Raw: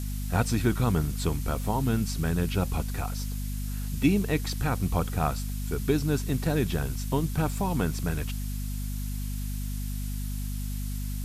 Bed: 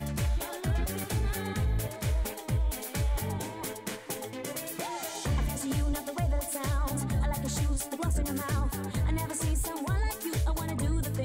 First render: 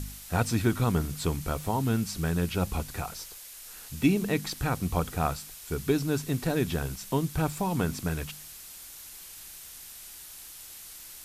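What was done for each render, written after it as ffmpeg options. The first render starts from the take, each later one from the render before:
-af "bandreject=f=50:t=h:w=4,bandreject=f=100:t=h:w=4,bandreject=f=150:t=h:w=4,bandreject=f=200:t=h:w=4,bandreject=f=250:t=h:w=4"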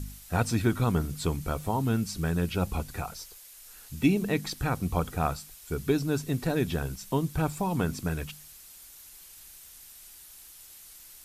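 -af "afftdn=nr=6:nf=-46"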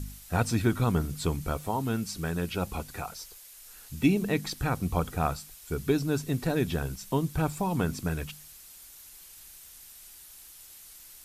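-filter_complex "[0:a]asettb=1/sr,asplit=3[s0][s1][s2];[s0]atrim=end=1.574[s3];[s1]atrim=start=1.57:end=3.24,asetpts=PTS-STARTPTS,afade=t=in:d=0.004:c=qsin,afade=t=out:st=1.666:d=0.004:c=qsin,lowshelf=f=190:g=-6.5[s4];[s2]atrim=start=3.236[s5];[s3][s4]acrossfade=d=0.004:c1=hsin:c2=qsin[s6];[s6][s5]acrossfade=d=0.004:c1=qsin:c2=hsin"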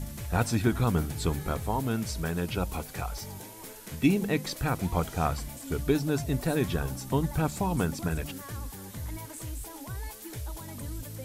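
-filter_complex "[1:a]volume=0.355[s0];[0:a][s0]amix=inputs=2:normalize=0"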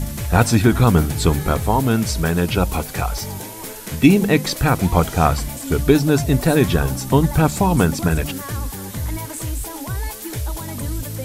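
-af "volume=3.98,alimiter=limit=0.891:level=0:latency=1"

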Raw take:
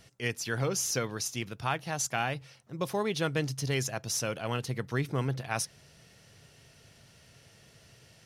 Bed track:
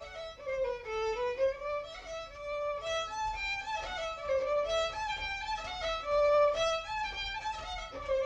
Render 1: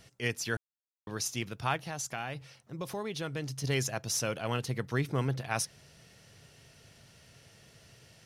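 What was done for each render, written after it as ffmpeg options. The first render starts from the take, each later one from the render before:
-filter_complex "[0:a]asettb=1/sr,asplit=3[s0][s1][s2];[s0]atrim=end=1.764[s3];[s1]atrim=start=1.76:end=3.64,asetpts=PTS-STARTPTS,afade=t=in:d=0.004:c=qsin,afade=t=out:st=1.876:d=0.004:c=qsin,acompressor=threshold=0.0141:ratio=2:attack=3.2:release=140:knee=1:detection=peak[s4];[s2]atrim=start=3.636[s5];[s3][s4]acrossfade=d=0.004:c1=hsin:c2=qsin[s6];[s6][s5]acrossfade=d=0.004:c1=qsin:c2=hsin,asplit=3[s7][s8][s9];[s7]atrim=end=0.57,asetpts=PTS-STARTPTS,afade=t=out:st=0.566:d=0.004:c=hsin[s10];[s8]atrim=start=0.57:end=1.07,asetpts=PTS-STARTPTS,volume=0[s11];[s9]atrim=start=1.07,asetpts=PTS-STARTPTS,afade=t=in:d=0.004:c=hsin[s12];[s10][s11][s12]concat=n=3:v=0:a=1"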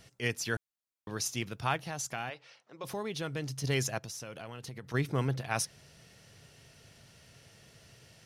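-filter_complex "[0:a]asplit=3[s0][s1][s2];[s0]afade=t=out:st=2.29:d=0.02[s3];[s1]highpass=460,lowpass=5100,afade=t=in:st=2.29:d=0.02,afade=t=out:st=2.83:d=0.02[s4];[s2]afade=t=in:st=2.83:d=0.02[s5];[s3][s4][s5]amix=inputs=3:normalize=0,asplit=3[s6][s7][s8];[s6]afade=t=out:st=3.98:d=0.02[s9];[s7]acompressor=threshold=0.0112:ratio=8:attack=3.2:release=140:knee=1:detection=peak,afade=t=in:st=3.98:d=0.02,afade=t=out:st=4.93:d=0.02[s10];[s8]afade=t=in:st=4.93:d=0.02[s11];[s9][s10][s11]amix=inputs=3:normalize=0"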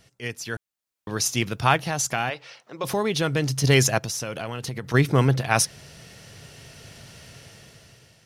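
-af "dynaudnorm=f=290:g=7:m=4.47"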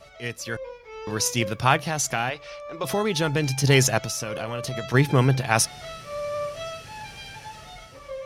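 -filter_complex "[1:a]volume=0.631[s0];[0:a][s0]amix=inputs=2:normalize=0"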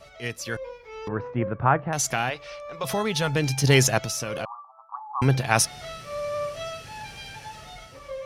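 -filter_complex "[0:a]asettb=1/sr,asplit=3[s0][s1][s2];[s0]atrim=end=1.084[s3];[s1]atrim=start=1.08:end=1.93,asetpts=PTS-STARTPTS,afade=t=in:d=0.004:c=qsin,afade=t=out:st=0.846:d=0.004:c=qsin,lowpass=f=1600:w=0.5412,lowpass=f=1600:w=1.3066[s4];[s2]atrim=start=1.926[s5];[s3][s4]acrossfade=d=0.004:c1=hsin:c2=qsin[s6];[s6][s5]acrossfade=d=0.004:c1=qsin:c2=hsin,asettb=1/sr,asplit=3[s7][s8][s9];[s7]atrim=end=2.654[s10];[s8]atrim=start=2.65:end=3.36,asetpts=PTS-STARTPTS,afade=t=in:d=0.004:c=qsin,afade=t=out:st=0.706:d=0.004:c=qsin,equalizer=f=330:w=3.8:g=-12.5[s11];[s9]atrim=start=3.356[s12];[s10][s11]acrossfade=d=0.004:c1=hsin:c2=qsin[s13];[s13][s12]acrossfade=d=0.004:c1=qsin:c2=hsin,asettb=1/sr,asplit=3[s14][s15][s16];[s14]atrim=end=4.454[s17];[s15]atrim=start=4.45:end=5.22,asetpts=PTS-STARTPTS,afade=t=in:d=0.004:c=qsin,afade=t=out:st=0.766:d=0.004:c=qsin,asuperpass=centerf=970:order=12:qfactor=2.1[s18];[s16]atrim=start=5.216[s19];[s17][s18]acrossfade=d=0.004:c1=hsin:c2=qsin[s20];[s20][s19]acrossfade=d=0.004:c1=qsin:c2=hsin"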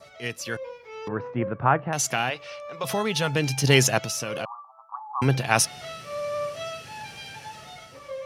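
-af "adynamicequalizer=threshold=0.00398:dfrequency=2800:dqfactor=7.2:tfrequency=2800:tqfactor=7.2:attack=5:release=100:ratio=0.375:range=2.5:mode=boostabove:tftype=bell,highpass=110"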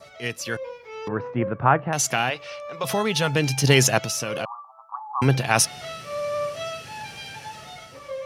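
-af "volume=1.33,alimiter=limit=0.708:level=0:latency=1"

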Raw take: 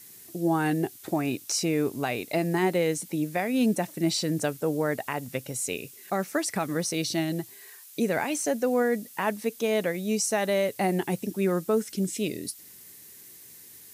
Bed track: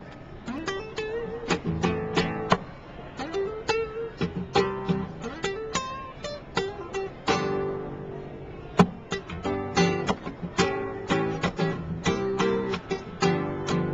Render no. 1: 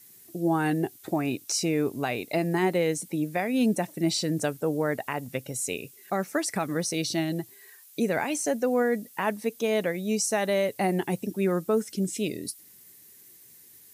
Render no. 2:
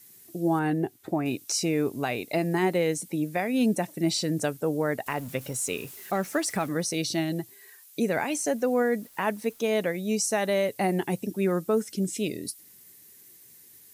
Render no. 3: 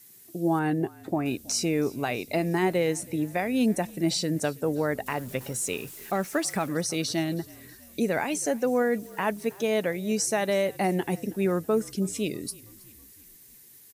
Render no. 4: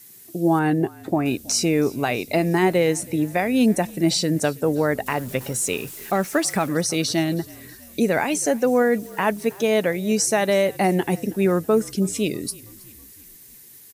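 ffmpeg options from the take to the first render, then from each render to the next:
-af "afftdn=nr=6:nf=-49"
-filter_complex "[0:a]asettb=1/sr,asplit=3[s0][s1][s2];[s0]atrim=end=0.594[s3];[s1]atrim=start=0.59:end=1.26,asetpts=PTS-STARTPTS,afade=t=in:d=0.004:c=qsin,afade=t=out:st=0.666:d=0.004:c=qsin,highshelf=f=2600:g=-9.5[s4];[s2]atrim=start=1.256[s5];[s3][s4]acrossfade=d=0.004:c1=hsin:c2=qsin[s6];[s6][s5]acrossfade=d=0.004:c1=qsin:c2=hsin,asettb=1/sr,asplit=3[s7][s8][s9];[s7]atrim=end=5.064[s10];[s8]atrim=start=5.06:end=6.69,asetpts=PTS-STARTPTS,afade=t=in:d=0.004:c=qsin,afade=t=out:st=1.626:d=0.004:c=qsin,aeval=exprs='val(0)+0.5*0.00794*sgn(val(0))':c=same[s11];[s9]atrim=start=6.686[s12];[s10][s11]acrossfade=d=0.004:c1=hsin:c2=qsin[s13];[s13][s12]acrossfade=d=0.004:c1=qsin:c2=hsin,asettb=1/sr,asplit=3[s14][s15][s16];[s14]atrim=end=8.514[s17];[s15]atrim=start=8.51:end=9.66,asetpts=PTS-STARTPTS,afade=t=in:d=0.004:c=qsin,afade=t=out:st=1.146:d=0.004:c=qsin,aeval=exprs='val(0)*gte(abs(val(0)),0.00299)':c=same[s18];[s16]atrim=start=9.656[s19];[s17][s18]acrossfade=d=0.004:c1=hsin:c2=qsin[s20];[s20][s19]acrossfade=d=0.004:c1=qsin:c2=hsin"
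-filter_complex "[0:a]asplit=5[s0][s1][s2][s3][s4];[s1]adelay=323,afreqshift=-41,volume=0.0708[s5];[s2]adelay=646,afreqshift=-82,volume=0.0398[s6];[s3]adelay=969,afreqshift=-123,volume=0.0221[s7];[s4]adelay=1292,afreqshift=-164,volume=0.0124[s8];[s0][s5][s6][s7][s8]amix=inputs=5:normalize=0"
-af "volume=2"

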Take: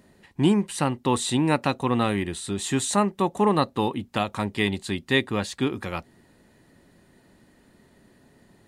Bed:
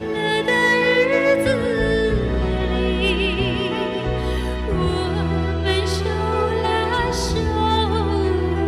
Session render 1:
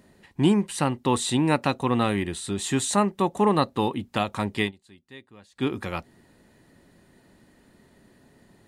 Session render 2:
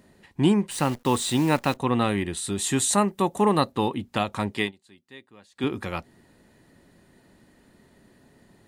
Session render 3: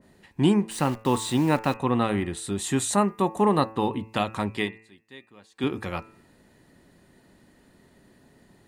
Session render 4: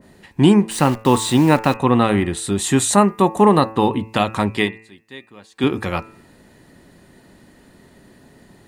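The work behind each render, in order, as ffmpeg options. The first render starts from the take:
-filter_complex "[0:a]asplit=3[s0][s1][s2];[s0]atrim=end=4.72,asetpts=PTS-STARTPTS,afade=t=out:st=4.58:d=0.14:c=qsin:silence=0.0668344[s3];[s1]atrim=start=4.72:end=5.55,asetpts=PTS-STARTPTS,volume=0.0668[s4];[s2]atrim=start=5.55,asetpts=PTS-STARTPTS,afade=t=in:d=0.14:c=qsin:silence=0.0668344[s5];[s3][s4][s5]concat=n=3:v=0:a=1"
-filter_complex "[0:a]asettb=1/sr,asplit=3[s0][s1][s2];[s0]atrim=end=0.714[s3];[s1]atrim=start=0.71:end=1.77,asetpts=PTS-STARTPTS,afade=t=in:d=0.004:c=qsin,afade=t=out:st=1.056:d=0.004:c=qsin,acrusher=bits=7:dc=4:mix=0:aa=0.000001[s4];[s2]atrim=start=1.766[s5];[s3][s4]acrossfade=d=0.004:c1=hsin:c2=qsin[s6];[s6][s5]acrossfade=d=0.004:c1=qsin:c2=hsin,asettb=1/sr,asplit=3[s7][s8][s9];[s7]atrim=end=2.374[s10];[s8]atrim=start=2.37:end=3.72,asetpts=PTS-STARTPTS,afade=t=in:d=0.004:c=qsin,afade=t=out:st=1.346:d=0.004:c=qsin,highshelf=f=9100:g=11[s11];[s9]atrim=start=3.716[s12];[s10][s11]acrossfade=d=0.004:c1=hsin:c2=qsin[s13];[s13][s12]acrossfade=d=0.004:c1=qsin:c2=hsin,asettb=1/sr,asplit=3[s14][s15][s16];[s14]atrim=end=4.514[s17];[s15]atrim=start=4.51:end=5.64,asetpts=PTS-STARTPTS,afade=t=in:d=0.004:c=qsin,afade=t=out:st=1.126:d=0.004:c=qsin,highpass=f=180:p=1[s18];[s16]atrim=start=5.636[s19];[s17][s18]acrossfade=d=0.004:c1=hsin:c2=qsin[s20];[s20][s19]acrossfade=d=0.004:c1=qsin:c2=hsin"
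-af "bandreject=f=110.4:t=h:w=4,bandreject=f=220.8:t=h:w=4,bandreject=f=331.2:t=h:w=4,bandreject=f=441.6:t=h:w=4,bandreject=f=552:t=h:w=4,bandreject=f=662.4:t=h:w=4,bandreject=f=772.8:t=h:w=4,bandreject=f=883.2:t=h:w=4,bandreject=f=993.6:t=h:w=4,bandreject=f=1104:t=h:w=4,bandreject=f=1214.4:t=h:w=4,bandreject=f=1324.8:t=h:w=4,bandreject=f=1435.2:t=h:w=4,bandreject=f=1545.6:t=h:w=4,bandreject=f=1656:t=h:w=4,bandreject=f=1766.4:t=h:w=4,bandreject=f=1876.8:t=h:w=4,bandreject=f=1987.2:t=h:w=4,bandreject=f=2097.6:t=h:w=4,bandreject=f=2208:t=h:w=4,bandreject=f=2318.4:t=h:w=4,bandreject=f=2428.8:t=h:w=4,bandreject=f=2539.2:t=h:w=4,bandreject=f=2649.6:t=h:w=4,bandreject=f=2760:t=h:w=4,adynamicequalizer=threshold=0.00794:dfrequency=2200:dqfactor=0.7:tfrequency=2200:tqfactor=0.7:attack=5:release=100:ratio=0.375:range=2.5:mode=cutabove:tftype=highshelf"
-af "volume=2.66,alimiter=limit=0.794:level=0:latency=1"

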